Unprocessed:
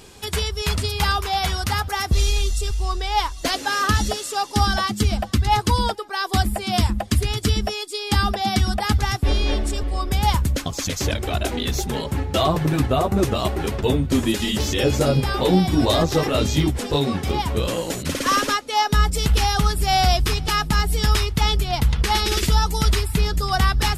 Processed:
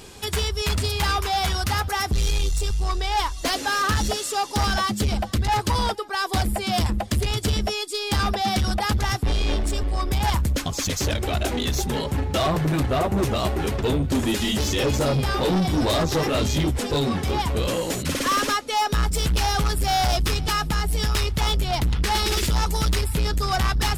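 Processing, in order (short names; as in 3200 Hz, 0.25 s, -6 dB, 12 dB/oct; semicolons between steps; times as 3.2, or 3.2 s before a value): 20.49–21.15 compressor, threshold -17 dBFS, peak gain reduction 5 dB; soft clip -19.5 dBFS, distortion -10 dB; gain +2 dB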